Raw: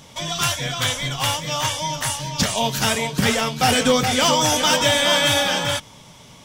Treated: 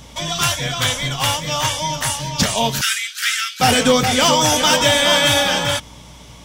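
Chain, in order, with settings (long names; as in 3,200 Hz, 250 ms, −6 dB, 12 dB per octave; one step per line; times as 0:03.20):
mains hum 60 Hz, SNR 26 dB
0:02.81–0:03.60: Butterworth high-pass 1,300 Hz 96 dB per octave
level +3 dB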